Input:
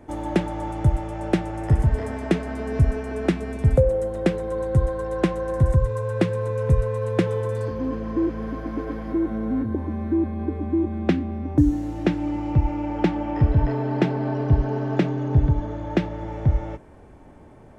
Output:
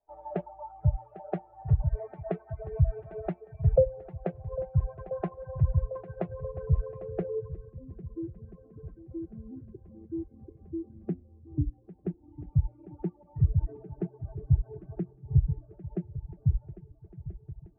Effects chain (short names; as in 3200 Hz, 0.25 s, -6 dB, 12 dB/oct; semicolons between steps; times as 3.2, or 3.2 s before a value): per-bin expansion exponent 2; EQ curve 150 Hz 0 dB, 280 Hz -22 dB, 400 Hz -6 dB, 2800 Hz +11 dB; swung echo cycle 1.334 s, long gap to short 1.5:1, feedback 57%, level -15 dB; low-pass sweep 630 Hz -> 310 Hz, 6.91–7.91; air absorption 260 m; de-hum 118.3 Hz, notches 11; reverb removal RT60 0.92 s; gain -2.5 dB